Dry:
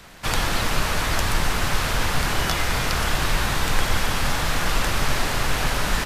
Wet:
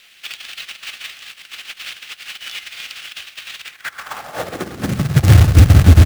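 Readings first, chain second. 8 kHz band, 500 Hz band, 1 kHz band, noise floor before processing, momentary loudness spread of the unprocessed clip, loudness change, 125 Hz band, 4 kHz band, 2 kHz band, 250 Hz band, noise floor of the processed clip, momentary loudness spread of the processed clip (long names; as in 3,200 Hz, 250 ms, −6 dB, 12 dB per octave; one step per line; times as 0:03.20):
−4.5 dB, 0.0 dB, −6.0 dB, −25 dBFS, 1 LU, +10.5 dB, +14.5 dB, −2.5 dB, −4.0 dB, +8.0 dB, −47 dBFS, 22 LU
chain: compressor whose output falls as the input rises −24 dBFS, ratio −0.5
high-pass filter sweep 2,800 Hz → 72 Hz, 0:03.60–0:05.35
parametric band 73 Hz +14 dB 2.4 octaves
slap from a distant wall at 32 metres, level −16 dB
downsampling to 22,050 Hz
spectral tilt −3 dB per octave
frequency shifter +19 Hz
log-companded quantiser 4 bits
notch filter 970 Hz, Q 6.2
level −2 dB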